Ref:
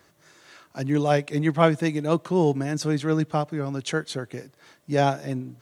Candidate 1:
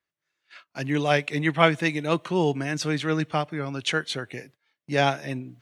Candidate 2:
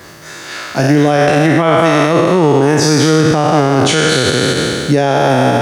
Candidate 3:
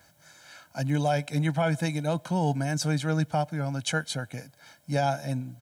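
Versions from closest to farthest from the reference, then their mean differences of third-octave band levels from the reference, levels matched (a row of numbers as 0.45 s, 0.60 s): 1, 3, 2; 3.0 dB, 4.5 dB, 10.0 dB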